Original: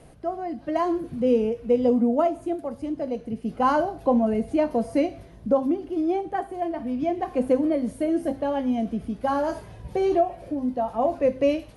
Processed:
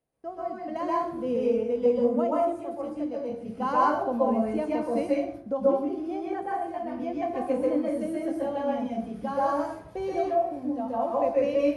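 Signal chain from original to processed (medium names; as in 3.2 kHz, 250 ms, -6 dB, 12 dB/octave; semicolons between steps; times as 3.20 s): gate -40 dBFS, range -24 dB; bass shelf 120 Hz -9.5 dB; plate-style reverb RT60 0.6 s, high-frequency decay 0.55×, pre-delay 115 ms, DRR -5.5 dB; trim -8.5 dB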